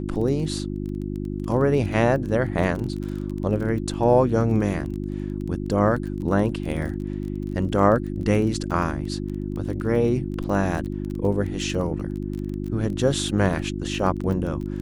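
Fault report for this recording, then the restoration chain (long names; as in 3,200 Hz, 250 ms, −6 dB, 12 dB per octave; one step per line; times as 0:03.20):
surface crackle 22 per second −30 dBFS
mains hum 50 Hz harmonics 7 −29 dBFS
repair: click removal
hum removal 50 Hz, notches 7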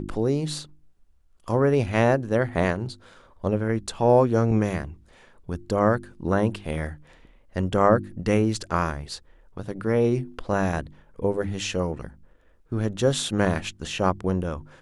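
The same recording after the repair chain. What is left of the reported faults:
none of them is left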